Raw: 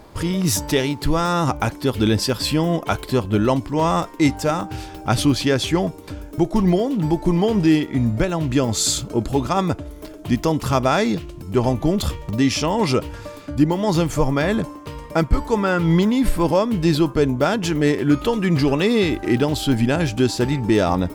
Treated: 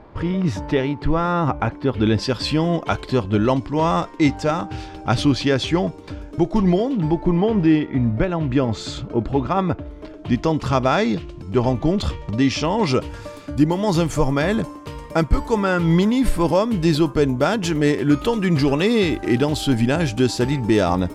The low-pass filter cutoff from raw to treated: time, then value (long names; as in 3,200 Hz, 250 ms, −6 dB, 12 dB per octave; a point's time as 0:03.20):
0:01.91 2,200 Hz
0:02.35 5,300 Hz
0:06.83 5,300 Hz
0:07.27 2,600 Hz
0:09.74 2,600 Hz
0:10.60 5,100 Hz
0:12.78 5,100 Hz
0:13.21 12,000 Hz